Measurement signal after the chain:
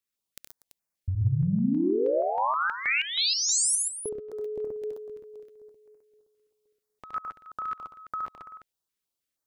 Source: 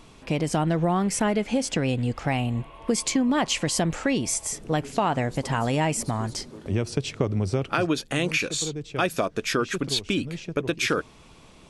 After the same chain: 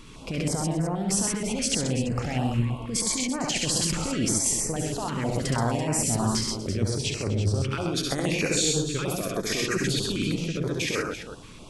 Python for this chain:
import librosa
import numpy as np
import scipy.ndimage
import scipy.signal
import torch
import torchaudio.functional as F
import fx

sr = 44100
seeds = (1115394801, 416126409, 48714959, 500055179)

y = fx.over_compress(x, sr, threshold_db=-28.0, ratio=-1.0)
y = fx.echo_multitap(y, sr, ms=(69, 97, 128, 138, 241, 336), db=(-4.0, -11.5, -3.0, -13.5, -16.5, -11.0))
y = fx.filter_held_notch(y, sr, hz=6.3, low_hz=710.0, high_hz=3400.0)